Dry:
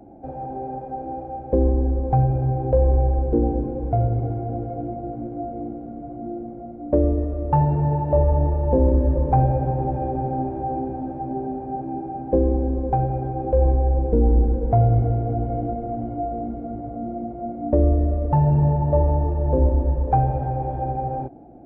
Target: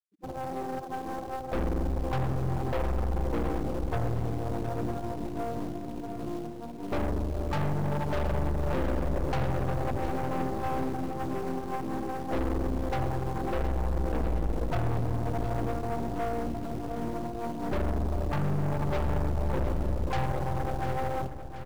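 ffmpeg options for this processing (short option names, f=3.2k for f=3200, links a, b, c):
-filter_complex "[0:a]afftfilt=real='re*gte(hypot(re,im),0.0631)':imag='im*gte(hypot(re,im),0.0631)':win_size=1024:overlap=0.75,asplit=3[a][b][c];[b]asetrate=29433,aresample=44100,atempo=1.49831,volume=-6dB[d];[c]asetrate=58866,aresample=44100,atempo=0.749154,volume=-13dB[e];[a][d][e]amix=inputs=3:normalize=0,asplit=2[f][g];[g]acrusher=bits=2:mode=log:mix=0:aa=0.000001,volume=-4dB[h];[f][h]amix=inputs=2:normalize=0,aeval=exprs='(tanh(12.6*val(0)+0.65)-tanh(0.65))/12.6':c=same,aecho=1:1:715|1430|2145|2860|3575|4290:0.266|0.152|0.0864|0.0493|0.0281|0.016,volume=-5.5dB"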